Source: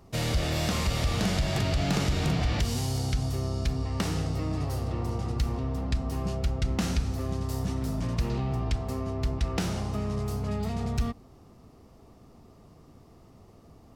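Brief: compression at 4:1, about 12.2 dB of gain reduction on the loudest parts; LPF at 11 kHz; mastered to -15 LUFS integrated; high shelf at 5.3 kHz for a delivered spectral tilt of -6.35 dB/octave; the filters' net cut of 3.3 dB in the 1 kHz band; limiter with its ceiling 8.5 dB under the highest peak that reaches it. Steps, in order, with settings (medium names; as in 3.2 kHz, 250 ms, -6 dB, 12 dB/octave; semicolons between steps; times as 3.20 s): low-pass 11 kHz; peaking EQ 1 kHz -4.5 dB; treble shelf 5.3 kHz -4 dB; compression 4:1, threshold -37 dBFS; trim +29 dB; peak limiter -6.5 dBFS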